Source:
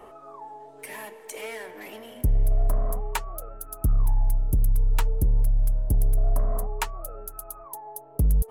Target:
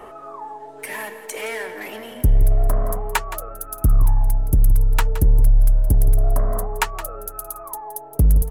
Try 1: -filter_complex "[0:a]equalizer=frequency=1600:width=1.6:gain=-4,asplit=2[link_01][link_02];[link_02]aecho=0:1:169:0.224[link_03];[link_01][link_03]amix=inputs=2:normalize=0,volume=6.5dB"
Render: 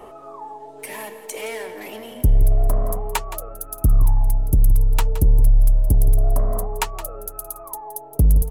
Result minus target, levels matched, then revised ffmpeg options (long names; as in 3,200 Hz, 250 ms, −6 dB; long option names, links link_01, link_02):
2,000 Hz band −6.0 dB
-filter_complex "[0:a]equalizer=frequency=1600:width=1.6:gain=4,asplit=2[link_01][link_02];[link_02]aecho=0:1:169:0.224[link_03];[link_01][link_03]amix=inputs=2:normalize=0,volume=6.5dB"